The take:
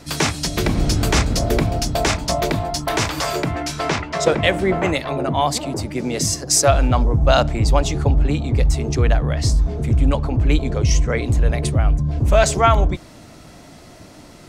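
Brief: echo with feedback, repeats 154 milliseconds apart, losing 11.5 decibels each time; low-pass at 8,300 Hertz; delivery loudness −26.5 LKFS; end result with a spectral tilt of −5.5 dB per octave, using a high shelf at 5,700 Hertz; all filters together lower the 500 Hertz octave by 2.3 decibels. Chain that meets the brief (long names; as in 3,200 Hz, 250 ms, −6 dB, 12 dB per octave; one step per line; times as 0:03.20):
low-pass filter 8,300 Hz
parametric band 500 Hz −3 dB
high-shelf EQ 5,700 Hz −8.5 dB
repeating echo 154 ms, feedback 27%, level −11.5 dB
level −7 dB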